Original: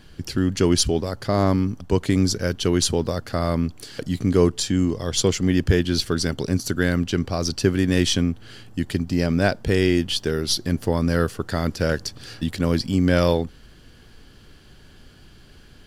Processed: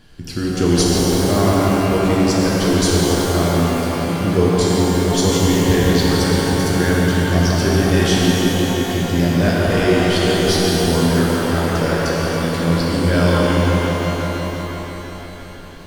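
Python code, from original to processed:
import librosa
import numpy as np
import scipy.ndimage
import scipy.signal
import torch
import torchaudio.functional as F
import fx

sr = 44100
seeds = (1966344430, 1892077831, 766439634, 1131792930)

y = fx.echo_bbd(x, sr, ms=172, stages=4096, feedback_pct=79, wet_db=-5)
y = fx.rev_shimmer(y, sr, seeds[0], rt60_s=3.3, semitones=12, shimmer_db=-8, drr_db=-4.5)
y = y * 10.0 ** (-2.0 / 20.0)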